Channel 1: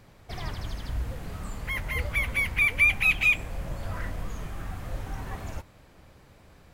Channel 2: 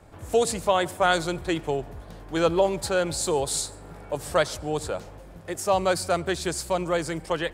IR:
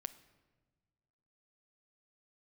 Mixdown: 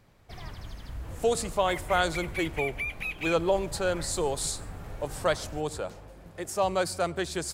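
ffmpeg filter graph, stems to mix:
-filter_complex "[0:a]acompressor=threshold=-26dB:ratio=3,volume=-6.5dB[link_01];[1:a]adelay=900,volume=-4dB[link_02];[link_01][link_02]amix=inputs=2:normalize=0"

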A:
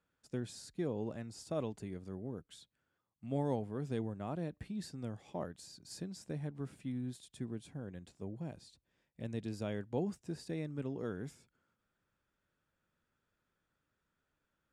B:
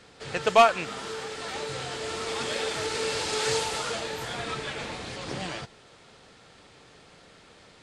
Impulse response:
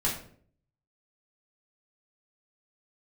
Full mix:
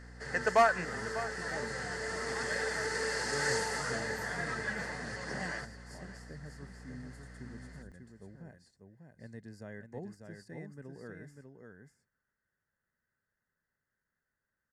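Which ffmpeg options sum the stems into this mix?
-filter_complex "[0:a]volume=-7.5dB,asplit=2[link_01][link_02];[link_02]volume=-5.5dB[link_03];[1:a]highpass=frequency=120:width=0.5412,highpass=frequency=120:width=1.3066,aeval=exprs='val(0)+0.00631*(sin(2*PI*60*n/s)+sin(2*PI*2*60*n/s)/2+sin(2*PI*3*60*n/s)/3+sin(2*PI*4*60*n/s)/4+sin(2*PI*5*60*n/s)/5)':channel_layout=same,volume=-5.5dB,asplit=2[link_04][link_05];[link_05]volume=-16.5dB[link_06];[link_03][link_06]amix=inputs=2:normalize=0,aecho=0:1:595:1[link_07];[link_01][link_04][link_07]amix=inputs=3:normalize=0,superequalizer=6b=0.631:11b=2.82:12b=0.355:13b=0.251,asoftclip=type=tanh:threshold=-14dB"

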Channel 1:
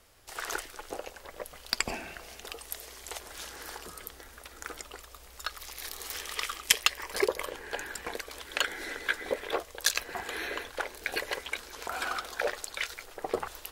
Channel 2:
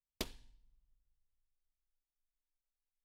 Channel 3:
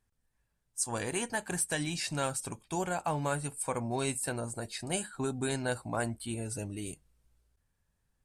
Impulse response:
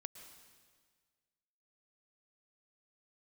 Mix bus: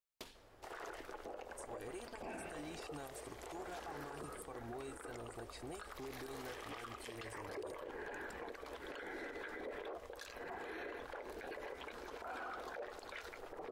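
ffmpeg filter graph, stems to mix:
-filter_complex "[0:a]highshelf=frequency=3100:gain=-11.5,adelay=350,volume=-5.5dB[link_01];[1:a]tiltshelf=frequency=670:gain=-6,volume=-8dB[link_02];[2:a]aecho=1:1:2.6:0.65,acompressor=threshold=-37dB:ratio=6,adelay=800,volume=-14dB[link_03];[link_01][link_02][link_03]amix=inputs=3:normalize=0,equalizer=frequency=430:width=0.3:gain=9,alimiter=level_in=14dB:limit=-24dB:level=0:latency=1:release=58,volume=-14dB"

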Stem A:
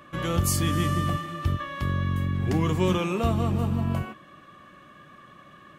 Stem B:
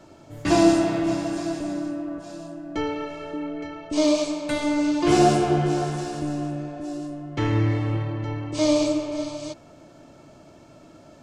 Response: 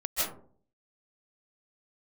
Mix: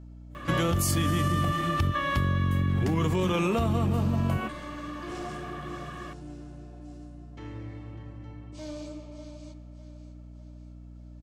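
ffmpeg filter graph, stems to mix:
-filter_complex "[0:a]acontrast=65,alimiter=limit=-14dB:level=0:latency=1:release=54,adelay=350,volume=1.5dB[link_01];[1:a]asoftclip=type=tanh:threshold=-15dB,volume=-18dB,asplit=2[link_02][link_03];[link_03]volume=-13.5dB,aecho=0:1:600|1200|1800|2400|3000|3600|4200:1|0.51|0.26|0.133|0.0677|0.0345|0.0176[link_04];[link_01][link_02][link_04]amix=inputs=3:normalize=0,aeval=exprs='val(0)+0.00631*(sin(2*PI*60*n/s)+sin(2*PI*2*60*n/s)/2+sin(2*PI*3*60*n/s)/3+sin(2*PI*4*60*n/s)/4+sin(2*PI*5*60*n/s)/5)':channel_layout=same,acompressor=threshold=-22dB:ratio=6"

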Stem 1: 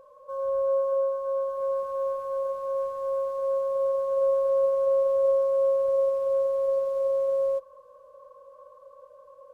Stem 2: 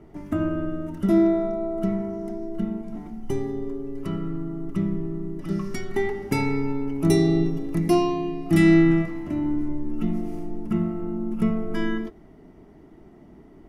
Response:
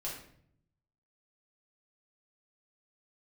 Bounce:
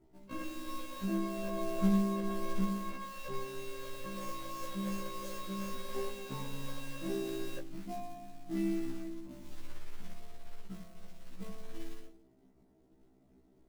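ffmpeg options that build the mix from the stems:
-filter_complex "[0:a]highpass=frequency=190:width=0.5412,highpass=frequency=190:width=1.3066,acrusher=bits=4:mix=0:aa=0.000001,volume=-6dB,asplit=2[link_01][link_02];[link_02]volume=-20dB[link_03];[1:a]volume=-6.5dB,afade=type=in:start_time=1.29:duration=0.41:silence=0.316228,afade=type=out:start_time=2.59:duration=0.57:silence=0.316228,asplit=2[link_04][link_05];[link_05]volume=-9.5dB[link_06];[2:a]atrim=start_sample=2205[link_07];[link_03][link_06]amix=inputs=2:normalize=0[link_08];[link_08][link_07]afir=irnorm=-1:irlink=0[link_09];[link_01][link_04][link_09]amix=inputs=3:normalize=0,lowpass=frequency=1100:poles=1,acrusher=bits=5:mode=log:mix=0:aa=0.000001,afftfilt=real='re*1.73*eq(mod(b,3),0)':imag='im*1.73*eq(mod(b,3),0)':win_size=2048:overlap=0.75"

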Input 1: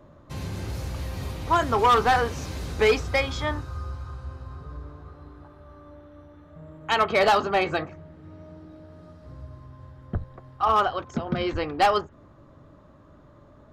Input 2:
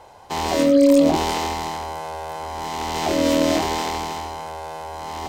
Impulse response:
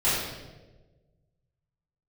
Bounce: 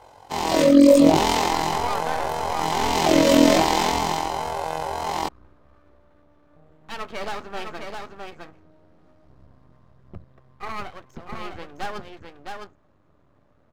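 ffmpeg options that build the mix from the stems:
-filter_complex "[0:a]highpass=49,aeval=exprs='max(val(0),0)':channel_layout=same,volume=-15.5dB,asplit=2[link_01][link_02];[link_02]volume=-4.5dB[link_03];[1:a]flanger=delay=18.5:depth=2.3:speed=1.9,tremolo=f=44:d=0.571,volume=2dB[link_04];[link_03]aecho=0:1:661:1[link_05];[link_01][link_04][link_05]amix=inputs=3:normalize=0,dynaudnorm=framelen=300:gausssize=3:maxgain=8dB"

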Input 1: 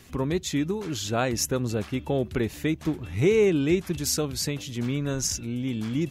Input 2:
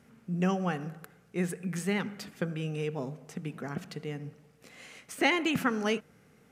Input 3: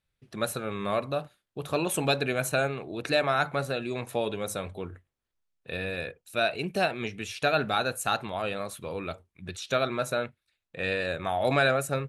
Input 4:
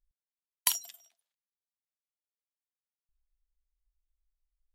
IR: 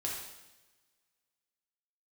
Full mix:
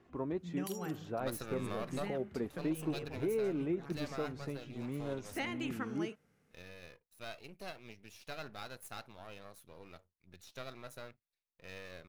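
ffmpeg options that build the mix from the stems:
-filter_complex "[0:a]flanger=delay=2.8:depth=4.9:regen=64:speed=0.34:shape=sinusoidal,lowpass=1000,aemphasis=mode=production:type=bsi,volume=-2dB[link_01];[1:a]adelay=150,volume=-12.5dB[link_02];[2:a]aeval=exprs='if(lt(val(0),0),0.251*val(0),val(0))':channel_layout=same,aexciter=amount=1.7:drive=3.9:freq=4600,adelay=850,volume=-7dB,afade=type=out:start_time=2.14:duration=0.27:silence=0.316228[link_03];[3:a]volume=-10.5dB[link_04];[link_01][link_02][link_03][link_04]amix=inputs=4:normalize=0,alimiter=level_in=2.5dB:limit=-24dB:level=0:latency=1:release=179,volume=-2.5dB"

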